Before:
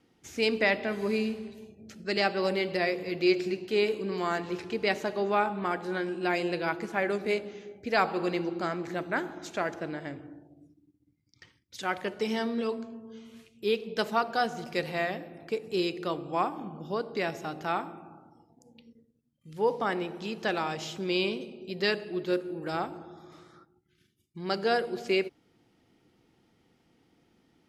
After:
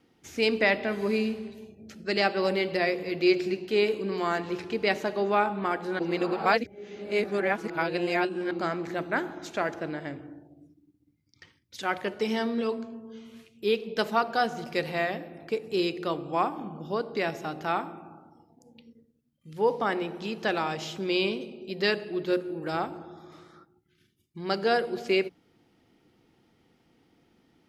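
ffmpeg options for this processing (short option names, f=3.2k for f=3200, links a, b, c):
-filter_complex "[0:a]asplit=3[a][b][c];[a]atrim=end=5.992[d];[b]atrim=start=5.988:end=8.512,asetpts=PTS-STARTPTS,areverse[e];[c]atrim=start=8.508[f];[d][e]acrossfade=d=0.004:c1=hsin:c2=hsin[g];[g][f]acrossfade=d=0.004:c1=hsin:c2=hsin,equalizer=f=7.8k:w=1.2:g=-3,bandreject=f=60:t=h:w=6,bandreject=f=120:t=h:w=6,bandreject=f=180:t=h:w=6,volume=2dB"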